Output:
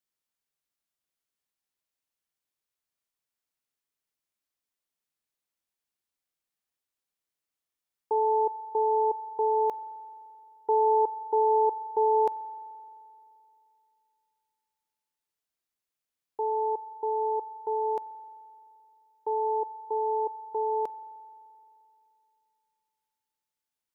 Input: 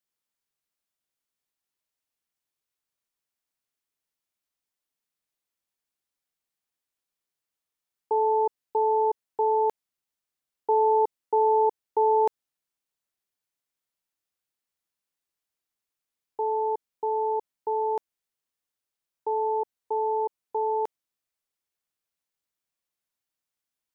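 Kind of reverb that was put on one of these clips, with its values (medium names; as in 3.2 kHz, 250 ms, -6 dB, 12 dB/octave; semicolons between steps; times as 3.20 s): spring tank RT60 2.7 s, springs 43 ms, chirp 25 ms, DRR 17.5 dB; trim -2 dB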